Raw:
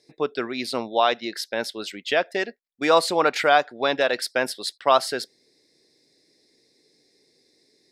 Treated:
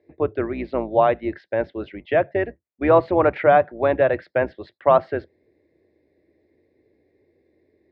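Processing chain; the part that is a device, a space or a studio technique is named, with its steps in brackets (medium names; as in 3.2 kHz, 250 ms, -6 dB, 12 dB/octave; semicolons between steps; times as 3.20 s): sub-octave bass pedal (octave divider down 2 oct, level 0 dB; cabinet simulation 81–2100 Hz, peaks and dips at 340 Hz +7 dB, 590 Hz +7 dB, 1.4 kHz -4 dB)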